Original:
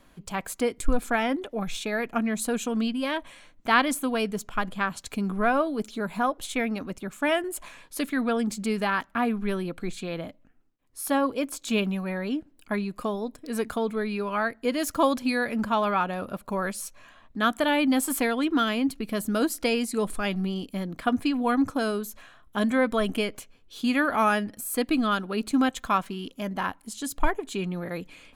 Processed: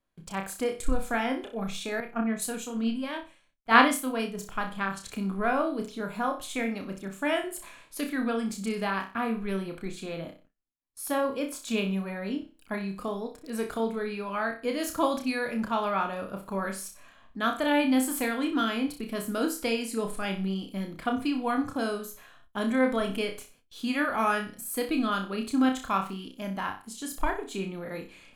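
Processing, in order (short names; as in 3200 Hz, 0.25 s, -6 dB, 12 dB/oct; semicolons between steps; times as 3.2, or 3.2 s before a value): flutter echo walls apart 5.3 m, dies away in 0.34 s; gate with hold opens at -42 dBFS; 2–4.39 three-band expander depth 100%; gain -4.5 dB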